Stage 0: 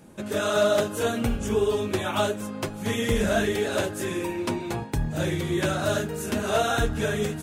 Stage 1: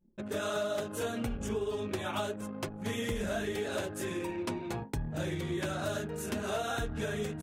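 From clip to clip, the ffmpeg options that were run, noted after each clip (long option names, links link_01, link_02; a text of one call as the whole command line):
ffmpeg -i in.wav -af "anlmdn=1.58,acompressor=threshold=-24dB:ratio=6,volume=-6dB" out.wav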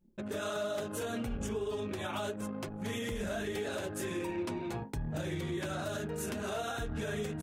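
ffmpeg -i in.wav -af "alimiter=level_in=5dB:limit=-24dB:level=0:latency=1:release=95,volume=-5dB,volume=1.5dB" out.wav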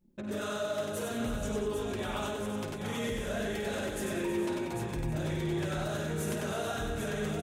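ffmpeg -i in.wav -filter_complex "[0:a]asplit=2[link_01][link_02];[link_02]aecho=0:1:52|95|187|454|797:0.335|0.668|0.316|0.237|0.501[link_03];[link_01][link_03]amix=inputs=2:normalize=0,asoftclip=type=tanh:threshold=-23dB,asplit=2[link_04][link_05];[link_05]aecho=0:1:320:0.266[link_06];[link_04][link_06]amix=inputs=2:normalize=0" out.wav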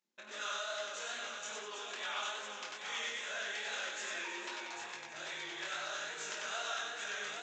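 ffmpeg -i in.wav -af "aresample=16000,aresample=44100,flanger=delay=19:depth=6.5:speed=2.4,highpass=1300,volume=5.5dB" out.wav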